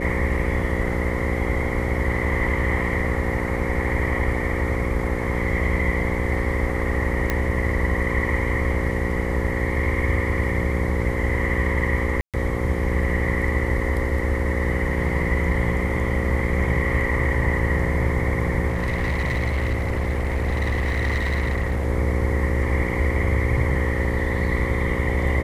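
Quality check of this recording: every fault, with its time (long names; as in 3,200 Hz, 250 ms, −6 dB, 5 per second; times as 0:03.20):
mains buzz 60 Hz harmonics 9 −27 dBFS
0:07.30: click −8 dBFS
0:12.21–0:12.34: drop-out 127 ms
0:18.68–0:21.87: clipping −19 dBFS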